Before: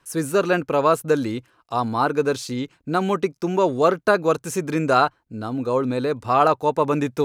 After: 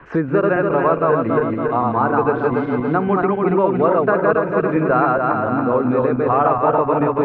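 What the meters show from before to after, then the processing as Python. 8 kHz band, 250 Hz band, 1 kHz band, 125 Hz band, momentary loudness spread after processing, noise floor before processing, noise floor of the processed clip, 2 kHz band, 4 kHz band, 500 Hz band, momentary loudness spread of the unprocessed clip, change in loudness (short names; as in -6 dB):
under -35 dB, +5.5 dB, +4.0 dB, +5.0 dB, 3 LU, -66 dBFS, -24 dBFS, +3.5 dB, under -10 dB, +4.5 dB, 9 LU, +4.0 dB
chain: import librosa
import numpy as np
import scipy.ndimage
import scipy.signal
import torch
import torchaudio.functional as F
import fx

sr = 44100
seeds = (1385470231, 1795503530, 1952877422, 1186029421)

y = fx.reverse_delay_fb(x, sr, ms=140, feedback_pct=66, wet_db=-1.0)
y = scipy.signal.sosfilt(scipy.signal.cheby2(4, 80, 10000.0, 'lowpass', fs=sr, output='sos'), y)
y = fx.band_squash(y, sr, depth_pct=70)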